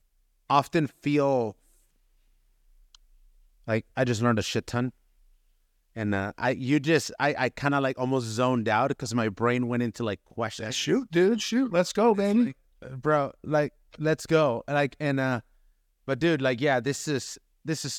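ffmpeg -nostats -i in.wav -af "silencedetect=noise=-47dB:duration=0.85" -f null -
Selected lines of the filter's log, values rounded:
silence_start: 1.52
silence_end: 2.95 | silence_duration: 1.42
silence_start: 4.90
silence_end: 5.96 | silence_duration: 1.06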